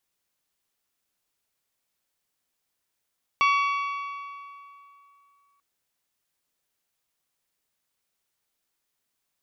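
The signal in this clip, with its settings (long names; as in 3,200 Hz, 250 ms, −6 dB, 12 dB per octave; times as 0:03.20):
struck metal bell, length 2.19 s, lowest mode 1,130 Hz, modes 6, decay 2.74 s, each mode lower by 5 dB, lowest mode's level −18 dB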